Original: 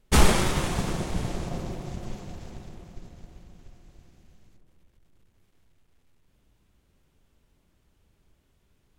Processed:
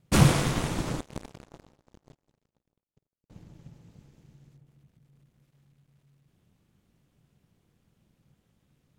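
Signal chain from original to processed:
ring modulation 140 Hz
0:01.00–0:03.30: power curve on the samples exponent 3

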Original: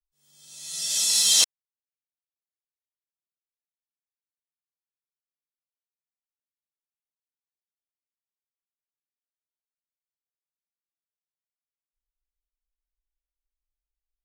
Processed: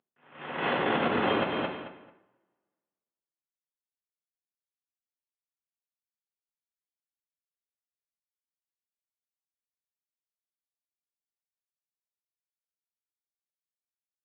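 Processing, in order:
variable-slope delta modulation 16 kbit/s
notch filter 2,300 Hz, Q 12
coupled-rooms reverb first 0.61 s, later 1.7 s, from −26 dB, DRR 3.5 dB
automatic gain control gain up to 16 dB
on a send: repeating echo 220 ms, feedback 22%, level −11 dB
on the sum: low-pass that shuts in the quiet parts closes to 2,100 Hz, open at −27 dBFS
high-pass filter 220 Hz 12 dB per octave
downward compressor 6 to 1, threshold −31 dBFS, peak gain reduction 9.5 dB
level +7.5 dB

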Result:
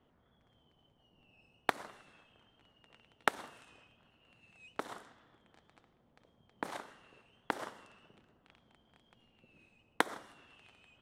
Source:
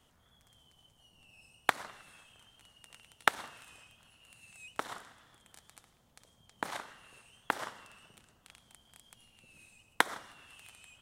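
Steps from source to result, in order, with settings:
low-pass that shuts in the quiet parts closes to 2,400 Hz, open at −40 dBFS
parametric band 340 Hz +9 dB 2.3 octaves
level −6 dB

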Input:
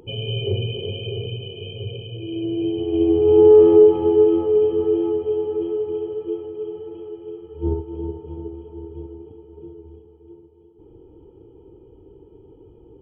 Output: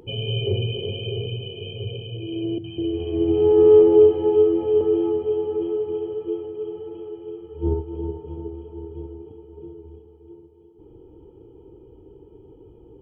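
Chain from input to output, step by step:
0:02.58–0:04.81: three-band delay without the direct sound lows, highs, mids 60/200 ms, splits 230/950 Hz
convolution reverb RT60 0.50 s, pre-delay 11 ms, DRR 16.5 dB

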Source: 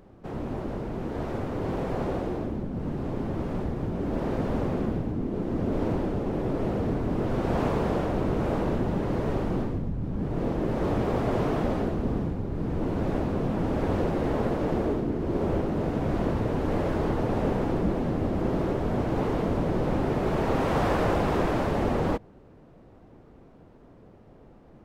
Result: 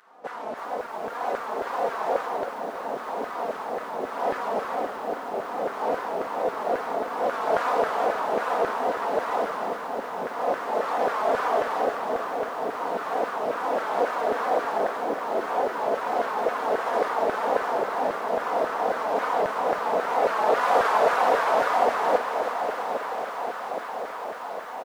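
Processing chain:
parametric band 2,600 Hz −3 dB
comb filter 4.3 ms, depth 55%
tape wow and flutter 130 cents
in parallel at −3 dB: soft clipping −28 dBFS, distortion −9 dB
on the sum: feedback delay with all-pass diffusion 903 ms, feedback 72%, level −8.5 dB
auto-filter high-pass saw down 3.7 Hz 540–1,500 Hz
feedback echo at a low word length 324 ms, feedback 55%, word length 8 bits, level −10 dB

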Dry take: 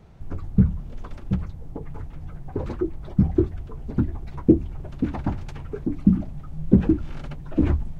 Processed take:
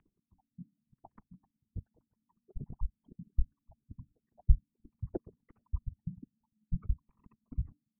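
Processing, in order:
spectral envelope exaggerated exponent 3
parametric band 910 Hz −13.5 dB 0.45 octaves
single-sideband voice off tune −370 Hz 540–3,100 Hz
level +12 dB

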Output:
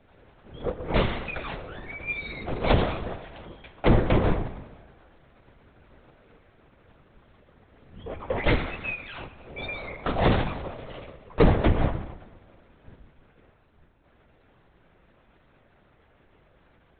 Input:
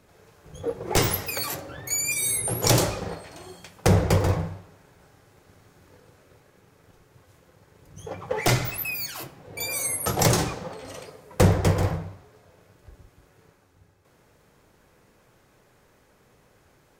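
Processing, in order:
echo machine with several playback heads 106 ms, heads first and second, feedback 47%, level −21 dB
linear-prediction vocoder at 8 kHz whisper

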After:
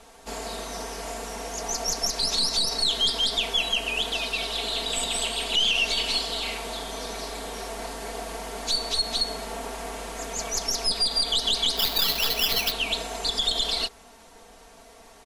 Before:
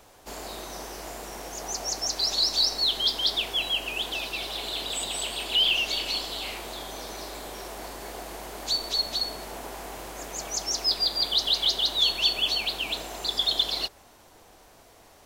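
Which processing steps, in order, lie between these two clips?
stylus tracing distortion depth 0.041 ms
Butterworth low-pass 12,000 Hz 96 dB per octave
comb filter 4.4 ms, depth 88%
brickwall limiter −16 dBFS, peak gain reduction 9.5 dB
0:11.77–0:12.72: sample-rate reduction 8,400 Hz, jitter 0%
level +1.5 dB

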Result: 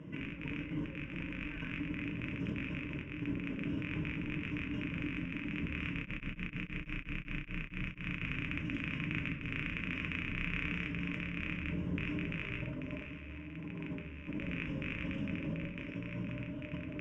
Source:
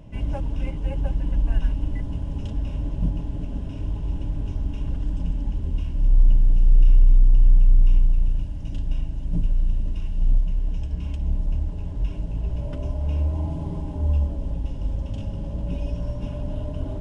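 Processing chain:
loose part that buzzes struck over −24 dBFS, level −21 dBFS
high-pass filter 230 Hz 12 dB per octave
compressor whose output falls as the input rises −40 dBFS, ratio −0.5
high-frequency loss of the air 150 metres
phaser with its sweep stopped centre 1,800 Hz, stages 4
convolution reverb RT60 0.70 s, pre-delay 6 ms, DRR 1.5 dB
0:05.99–0:08.20: tremolo along a rectified sine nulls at 7.5 Hz → 3.4 Hz
level +1 dB

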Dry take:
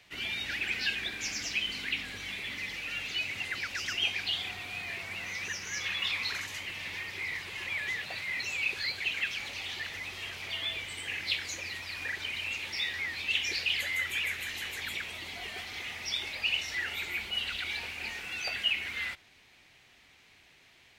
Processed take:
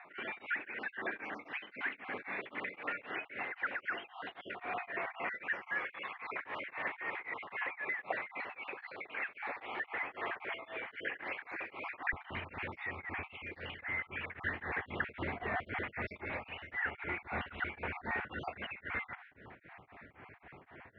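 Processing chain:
time-frequency cells dropped at random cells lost 31%
high-pass filter 380 Hz 12 dB per octave, from 0:12.13 72 Hz
downward compressor 10 to 1, threshold −41 dBFS, peak gain reduction 16.5 dB
low-pass filter 1,600 Hz 24 dB per octave
tremolo along a rectified sine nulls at 3.8 Hz
level +16.5 dB

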